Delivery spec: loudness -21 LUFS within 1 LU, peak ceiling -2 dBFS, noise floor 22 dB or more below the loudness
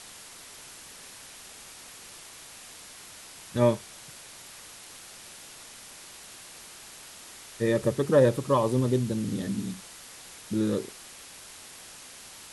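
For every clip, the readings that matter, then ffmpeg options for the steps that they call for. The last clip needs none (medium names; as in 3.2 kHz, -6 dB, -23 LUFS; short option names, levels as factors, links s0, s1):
noise floor -47 dBFS; noise floor target -49 dBFS; loudness -27.0 LUFS; peak level -10.0 dBFS; loudness target -21.0 LUFS
-> -af "afftdn=nr=6:nf=-47"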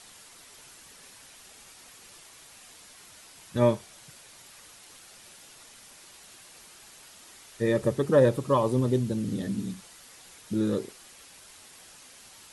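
noise floor -52 dBFS; loudness -26.5 LUFS; peak level -10.0 dBFS; loudness target -21.0 LUFS
-> -af "volume=1.88"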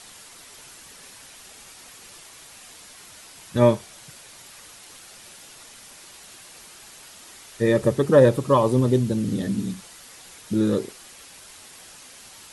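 loudness -21.0 LUFS; peak level -4.5 dBFS; noise floor -46 dBFS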